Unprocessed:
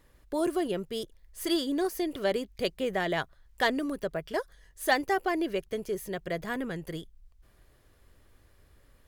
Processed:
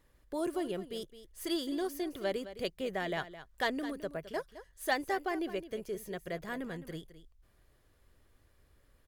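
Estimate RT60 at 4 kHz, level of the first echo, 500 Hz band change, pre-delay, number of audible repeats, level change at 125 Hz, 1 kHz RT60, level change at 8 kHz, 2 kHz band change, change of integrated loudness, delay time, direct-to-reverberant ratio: none, -13.5 dB, -6.0 dB, none, 1, -5.5 dB, none, -6.0 dB, -6.0 dB, -6.0 dB, 0.213 s, none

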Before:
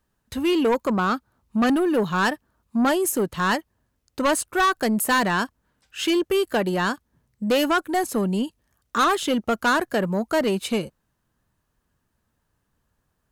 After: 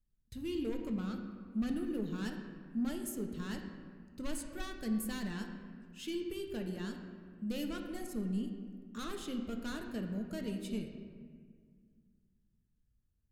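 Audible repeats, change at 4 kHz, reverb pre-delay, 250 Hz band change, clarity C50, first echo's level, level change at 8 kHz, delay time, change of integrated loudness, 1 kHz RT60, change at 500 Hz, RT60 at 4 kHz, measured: none, -19.0 dB, 3 ms, -13.0 dB, 5.5 dB, none, -18.0 dB, none, -17.0 dB, 1.7 s, -20.0 dB, 1.1 s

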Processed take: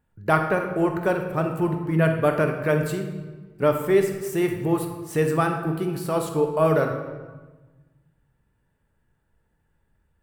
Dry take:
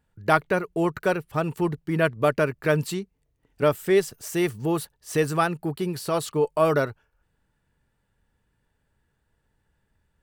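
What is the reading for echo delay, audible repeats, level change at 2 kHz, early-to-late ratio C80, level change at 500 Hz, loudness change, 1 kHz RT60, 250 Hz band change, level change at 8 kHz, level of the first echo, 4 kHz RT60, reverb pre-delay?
none, none, -0.5 dB, 8.0 dB, +1.5 dB, +1.5 dB, 1.2 s, +2.5 dB, -3.0 dB, none, 0.95 s, 6 ms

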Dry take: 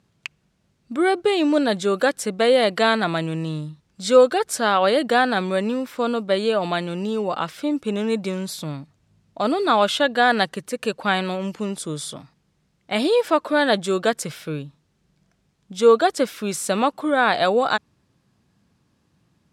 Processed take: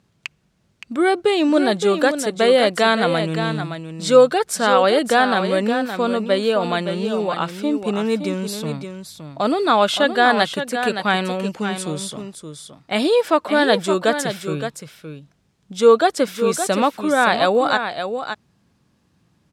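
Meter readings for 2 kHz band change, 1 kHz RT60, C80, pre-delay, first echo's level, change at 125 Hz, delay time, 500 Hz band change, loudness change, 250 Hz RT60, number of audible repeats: +2.5 dB, none, none, none, -8.5 dB, +2.5 dB, 0.568 s, +2.5 dB, +2.5 dB, none, 1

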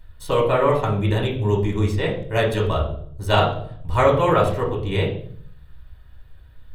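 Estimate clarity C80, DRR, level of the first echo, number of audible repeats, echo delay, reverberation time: 10.5 dB, -4.0 dB, none, none, none, 0.60 s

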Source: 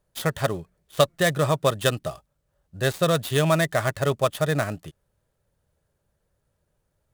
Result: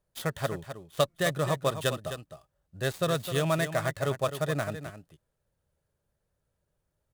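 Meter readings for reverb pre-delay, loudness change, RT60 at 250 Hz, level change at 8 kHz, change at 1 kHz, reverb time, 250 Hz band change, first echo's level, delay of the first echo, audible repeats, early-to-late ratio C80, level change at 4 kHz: none, -6.5 dB, none, -6.0 dB, -6.0 dB, none, -6.0 dB, -10.0 dB, 0.259 s, 1, none, -6.0 dB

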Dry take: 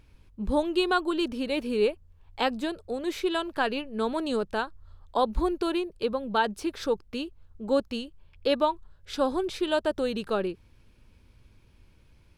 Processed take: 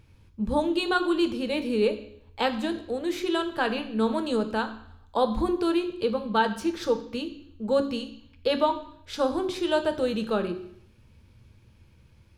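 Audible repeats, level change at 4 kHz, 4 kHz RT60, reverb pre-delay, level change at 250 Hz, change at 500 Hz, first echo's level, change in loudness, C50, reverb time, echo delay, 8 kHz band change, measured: none, +1.0 dB, 0.65 s, 3 ms, +3.0 dB, +1.5 dB, none, +1.5 dB, 12.0 dB, 0.70 s, none, +1.0 dB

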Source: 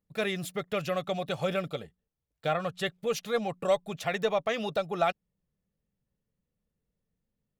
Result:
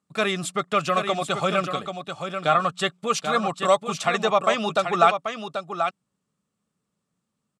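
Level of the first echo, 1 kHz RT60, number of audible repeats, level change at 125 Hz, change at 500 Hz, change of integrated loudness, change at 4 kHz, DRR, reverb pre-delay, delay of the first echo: -7.5 dB, none, 1, +5.0 dB, +5.5 dB, +7.5 dB, +9.0 dB, none, none, 0.786 s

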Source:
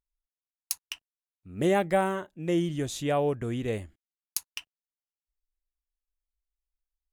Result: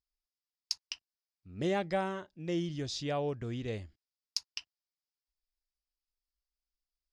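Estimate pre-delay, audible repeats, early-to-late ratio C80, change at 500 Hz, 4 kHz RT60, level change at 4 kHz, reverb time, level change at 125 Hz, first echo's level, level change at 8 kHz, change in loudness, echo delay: none, none, none, -7.5 dB, none, +0.5 dB, none, -5.5 dB, none, -8.0 dB, -7.0 dB, none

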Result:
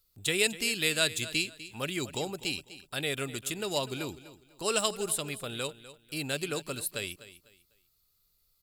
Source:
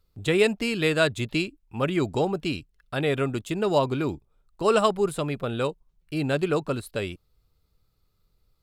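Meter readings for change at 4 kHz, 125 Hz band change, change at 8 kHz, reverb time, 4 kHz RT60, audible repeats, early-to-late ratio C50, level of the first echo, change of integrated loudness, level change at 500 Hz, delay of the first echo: +2.0 dB, -11.0 dB, +9.0 dB, none, none, 2, none, -15.5 dB, -5.5 dB, -10.5 dB, 0.249 s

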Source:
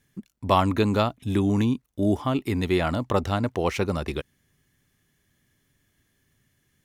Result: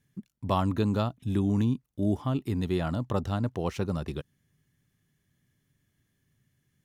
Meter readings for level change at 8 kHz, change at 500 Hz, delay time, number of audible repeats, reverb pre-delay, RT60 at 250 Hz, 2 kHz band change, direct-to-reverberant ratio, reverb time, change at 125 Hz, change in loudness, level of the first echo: -8.0 dB, -7.0 dB, none, none, none, none, -10.5 dB, none, none, -1.5 dB, -4.5 dB, none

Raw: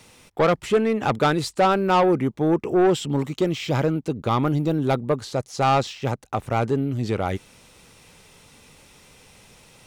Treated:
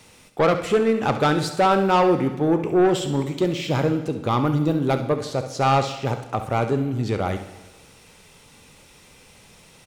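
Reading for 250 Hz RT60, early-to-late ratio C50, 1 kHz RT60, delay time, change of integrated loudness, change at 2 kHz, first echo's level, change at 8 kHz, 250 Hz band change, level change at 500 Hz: 1.2 s, 8.5 dB, 1.2 s, 67 ms, +0.5 dB, +0.5 dB, -12.0 dB, +1.0 dB, +1.0 dB, +1.0 dB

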